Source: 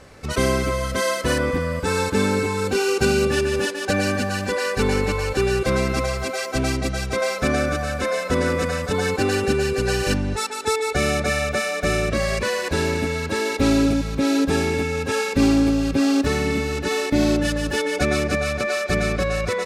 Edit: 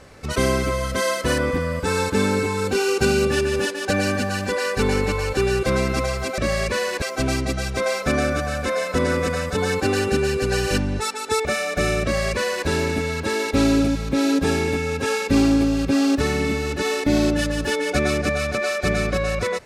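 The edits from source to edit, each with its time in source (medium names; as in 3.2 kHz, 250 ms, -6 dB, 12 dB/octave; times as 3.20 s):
10.81–11.51 s: delete
12.09–12.73 s: copy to 6.38 s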